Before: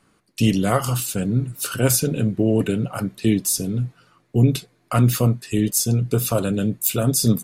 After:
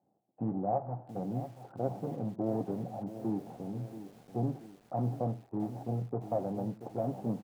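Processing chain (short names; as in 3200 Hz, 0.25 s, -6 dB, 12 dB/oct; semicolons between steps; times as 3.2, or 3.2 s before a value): median filter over 41 samples; HPF 100 Hz 24 dB/oct; low shelf 310 Hz -6 dB; notch 430 Hz, Q 14; in parallel at -2 dB: limiter -16 dBFS, peak gain reduction 8 dB; on the sum: ladder low-pass 830 Hz, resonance 75%; on a send: echo 92 ms -19 dB; on the sum: lo-fi delay 0.682 s, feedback 55%, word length 8-bit, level -12 dB; gain -4 dB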